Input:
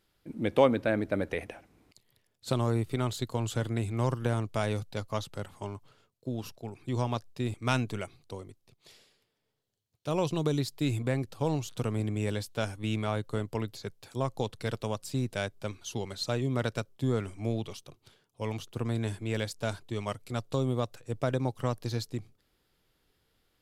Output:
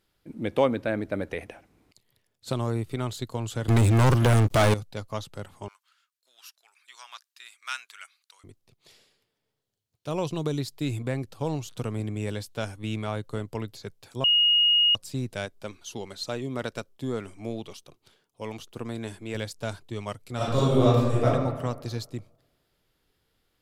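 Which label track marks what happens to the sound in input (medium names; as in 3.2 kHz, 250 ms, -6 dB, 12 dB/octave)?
3.680000	4.740000	waveshaping leveller passes 5
5.680000	8.440000	Chebyshev high-pass 1.4 kHz, order 3
14.240000	14.950000	bleep 2.87 kHz -17 dBFS
15.450000	19.350000	peaking EQ 110 Hz -7.5 dB 0.99 oct
20.360000	21.240000	reverb throw, RT60 1.4 s, DRR -11 dB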